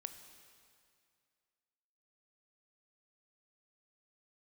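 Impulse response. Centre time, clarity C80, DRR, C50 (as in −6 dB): 25 ms, 10.0 dB, 8.0 dB, 9.0 dB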